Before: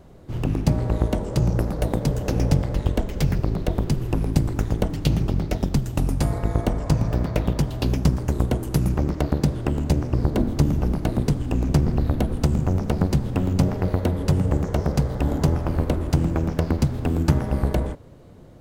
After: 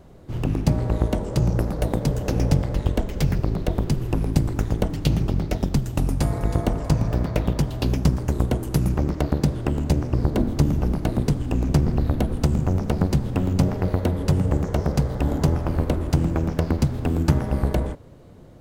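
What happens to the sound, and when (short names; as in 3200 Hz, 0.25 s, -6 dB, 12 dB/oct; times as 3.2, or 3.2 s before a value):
6.02–6.49 echo throw 0.32 s, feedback 30%, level -10.5 dB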